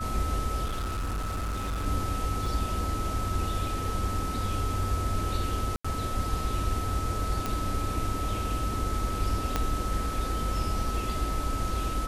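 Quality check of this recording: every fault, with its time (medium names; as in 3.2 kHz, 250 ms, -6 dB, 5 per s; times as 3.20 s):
whine 1.3 kHz -34 dBFS
0.64–1.87 s: clipped -28 dBFS
2.46 s: dropout 2.6 ms
5.76–5.84 s: dropout 85 ms
7.46 s: pop
9.56 s: pop -11 dBFS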